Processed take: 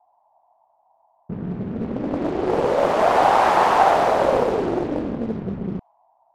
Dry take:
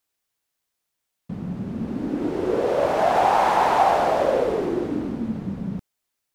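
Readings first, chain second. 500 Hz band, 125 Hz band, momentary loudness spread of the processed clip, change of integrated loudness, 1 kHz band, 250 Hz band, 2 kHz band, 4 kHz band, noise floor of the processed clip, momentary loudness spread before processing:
+2.0 dB, +2.0 dB, 14 LU, +2.5 dB, +2.5 dB, +1.0 dB, +3.5 dB, +2.5 dB, −63 dBFS, 13 LU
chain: noise in a band 650–990 Hz −62 dBFS
low-pass that shuts in the quiet parts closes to 940 Hz, open at −16.5 dBFS
highs frequency-modulated by the lows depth 0.94 ms
level +2.5 dB

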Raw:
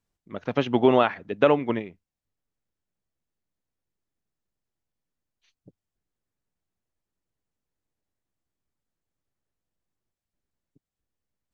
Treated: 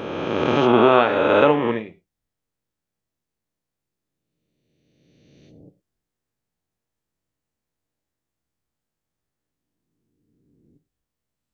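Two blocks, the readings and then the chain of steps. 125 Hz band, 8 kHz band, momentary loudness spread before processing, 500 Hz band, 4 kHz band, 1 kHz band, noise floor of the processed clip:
+4.0 dB, can't be measured, 17 LU, +5.5 dB, +7.0 dB, +7.0 dB, −84 dBFS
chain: peak hold with a rise ahead of every peak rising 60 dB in 2.32 s
reverb whose tail is shaped and stops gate 140 ms falling, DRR 9.5 dB

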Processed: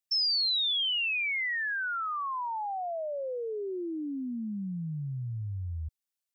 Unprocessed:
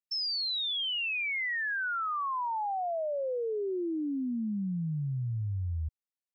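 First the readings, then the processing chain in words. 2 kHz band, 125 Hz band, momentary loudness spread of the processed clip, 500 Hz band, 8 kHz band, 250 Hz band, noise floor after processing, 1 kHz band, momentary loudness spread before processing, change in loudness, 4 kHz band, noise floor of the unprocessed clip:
+1.0 dB, −2.5 dB, 12 LU, −2.0 dB, can't be measured, −2.5 dB, below −85 dBFS, −1.0 dB, 5 LU, +1.5 dB, +4.0 dB, below −85 dBFS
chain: high-shelf EQ 2,500 Hz +9.5 dB
level −2.5 dB

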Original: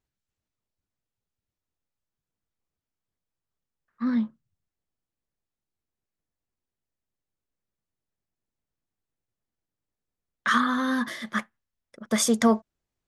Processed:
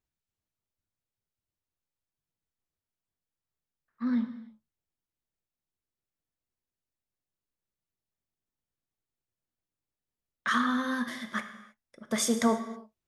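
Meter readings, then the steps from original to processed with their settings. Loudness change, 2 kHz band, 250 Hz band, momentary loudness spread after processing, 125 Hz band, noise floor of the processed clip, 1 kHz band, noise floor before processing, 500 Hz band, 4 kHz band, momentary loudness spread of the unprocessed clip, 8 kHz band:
−4.5 dB, −4.5 dB, −4.5 dB, 13 LU, can't be measured, below −85 dBFS, −4.5 dB, below −85 dBFS, −5.0 dB, −4.0 dB, 11 LU, −4.5 dB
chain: reverb whose tail is shaped and stops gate 350 ms falling, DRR 7.5 dB
level −5 dB

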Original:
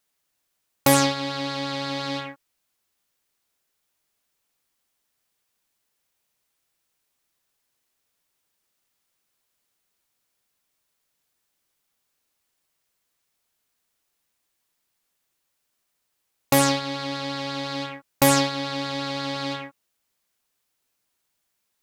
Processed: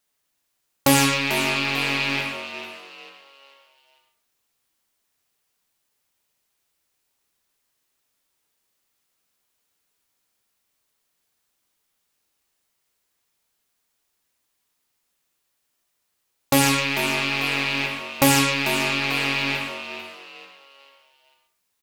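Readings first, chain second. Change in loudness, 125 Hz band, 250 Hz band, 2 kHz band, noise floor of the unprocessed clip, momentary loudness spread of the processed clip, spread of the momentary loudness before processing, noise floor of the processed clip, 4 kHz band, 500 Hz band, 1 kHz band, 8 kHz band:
+3.0 dB, +2.0 dB, +1.5 dB, +9.0 dB, −77 dBFS, 16 LU, 13 LU, −75 dBFS, +4.5 dB, −1.0 dB, +0.5 dB, +2.0 dB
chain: loose part that buzzes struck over −38 dBFS, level −14 dBFS
echo with shifted repeats 443 ms, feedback 37%, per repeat +91 Hz, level −11.5 dB
reverb whose tail is shaped and stops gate 170 ms flat, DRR 3.5 dB

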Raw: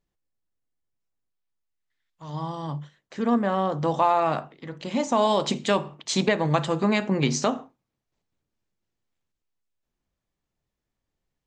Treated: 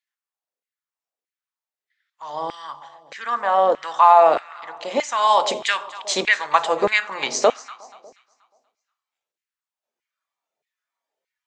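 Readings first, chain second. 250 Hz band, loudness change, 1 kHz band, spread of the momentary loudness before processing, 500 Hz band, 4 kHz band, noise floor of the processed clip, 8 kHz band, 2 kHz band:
−11.0 dB, +5.5 dB, +8.5 dB, 14 LU, +4.5 dB, +5.0 dB, below −85 dBFS, +4.0 dB, +9.5 dB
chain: delay that swaps between a low-pass and a high-pass 120 ms, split 880 Hz, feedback 63%, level −13.5 dB
noise reduction from a noise print of the clip's start 7 dB
auto-filter high-pass saw down 1.6 Hz 440–2,200 Hz
level +4 dB

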